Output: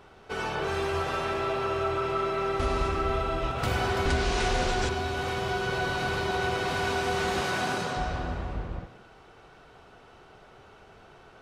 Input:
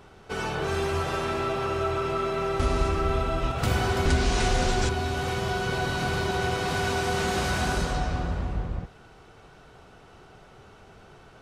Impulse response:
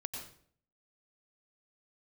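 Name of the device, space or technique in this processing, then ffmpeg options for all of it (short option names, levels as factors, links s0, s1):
filtered reverb send: -filter_complex "[0:a]asplit=2[s0][s1];[s1]highpass=270,lowpass=5400[s2];[1:a]atrim=start_sample=2205[s3];[s2][s3]afir=irnorm=-1:irlink=0,volume=0.794[s4];[s0][s4]amix=inputs=2:normalize=0,asettb=1/sr,asplit=3[s5][s6][s7];[s5]atrim=end=7.414[s8];[s6]atrim=start=7.41:end=7.97,asetpts=PTS-STARTPTS,afade=t=in:d=0.004:c=qsin,afade=t=out:st=0.556:d=0.004:c=qsin,highpass=f=110:w=0.5412,highpass=f=110:w=1.3066[s9];[s7]atrim=start=7.966[s10];[s8][s9]acrossfade=d=0.004:c1=hsin:c2=qsin[s11];[s11][s10]acrossfade=d=0.004:c1=qsin:c2=hsin,volume=0.596"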